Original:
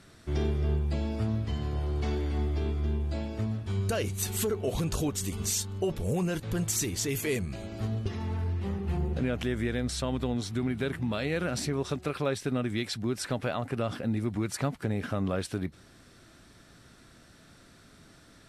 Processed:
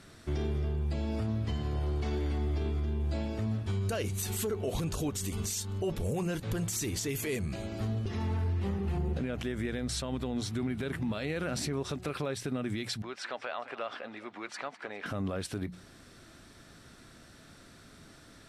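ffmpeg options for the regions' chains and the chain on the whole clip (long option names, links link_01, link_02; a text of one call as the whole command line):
ffmpeg -i in.wav -filter_complex "[0:a]asettb=1/sr,asplit=3[link_01][link_02][link_03];[link_01]atrim=end=13.024[link_04];[link_02]atrim=start=13.02:end=15.06,asetpts=PTS-STARTPTS,afade=type=in:duration=0.004:curve=qsin,afade=type=out:start_time=2.036:duration=0.004:curve=qsin,highpass=710,lowpass=3600,aecho=1:1:204|408|612:0.126|0.0504|0.0201,atrim=end_sample=89964[link_05];[link_03]atrim=start=15.056[link_06];[link_04][link_05]acrossfade=duration=0.004:curve1=hsin:curve2=qsin[link_07];[link_07][link_06]acrossfade=duration=0.004:curve1=qsin:curve2=hsin,bandreject=frequency=60:width_type=h:width=6,bandreject=frequency=120:width_type=h:width=6,bandreject=frequency=180:width_type=h:width=6,alimiter=level_in=2dB:limit=-24dB:level=0:latency=1:release=89,volume=-2dB,volume=1.5dB" out.wav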